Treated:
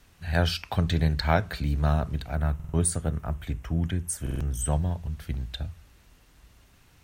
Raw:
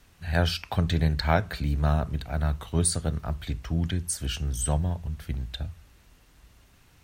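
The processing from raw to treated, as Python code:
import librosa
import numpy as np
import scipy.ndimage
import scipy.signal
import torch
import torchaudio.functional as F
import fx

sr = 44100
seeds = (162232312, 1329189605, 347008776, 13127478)

y = fx.peak_eq(x, sr, hz=4400.0, db=-11.5, octaves=0.73, at=(2.35, 4.73))
y = fx.buffer_glitch(y, sr, at_s=(2.55, 4.22), block=2048, repeats=3)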